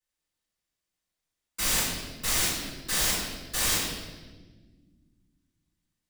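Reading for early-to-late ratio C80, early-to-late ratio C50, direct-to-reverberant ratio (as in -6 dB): 3.0 dB, 0.5 dB, -11.5 dB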